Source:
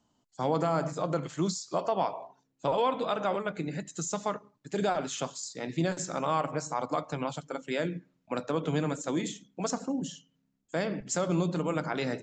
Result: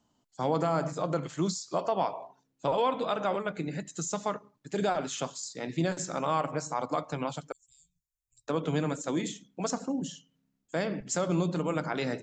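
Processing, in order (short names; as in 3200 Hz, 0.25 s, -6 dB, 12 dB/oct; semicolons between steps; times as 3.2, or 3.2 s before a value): 7.52–8.48 inverse Chebyshev band-stop 270–1600 Hz, stop band 80 dB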